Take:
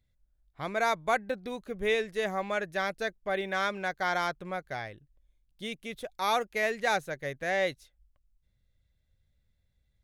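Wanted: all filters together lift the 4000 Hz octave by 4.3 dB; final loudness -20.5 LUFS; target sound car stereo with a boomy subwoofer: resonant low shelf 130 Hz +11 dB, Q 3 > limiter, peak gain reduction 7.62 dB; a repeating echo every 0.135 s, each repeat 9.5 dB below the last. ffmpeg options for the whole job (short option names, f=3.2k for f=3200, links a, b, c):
-af "lowshelf=f=130:t=q:w=3:g=11,equalizer=f=4k:t=o:g=5,aecho=1:1:135|270|405|540:0.335|0.111|0.0365|0.012,volume=13dB,alimiter=limit=-9.5dB:level=0:latency=1"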